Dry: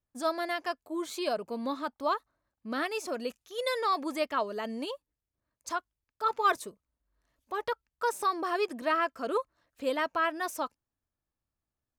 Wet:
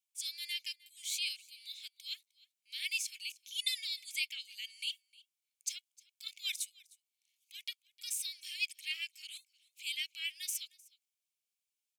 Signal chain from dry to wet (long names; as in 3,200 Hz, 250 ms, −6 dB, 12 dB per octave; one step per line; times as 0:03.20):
Chebyshev high-pass with heavy ripple 2,200 Hz, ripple 3 dB
on a send: single-tap delay 307 ms −23.5 dB
on the sum: level +6.5 dB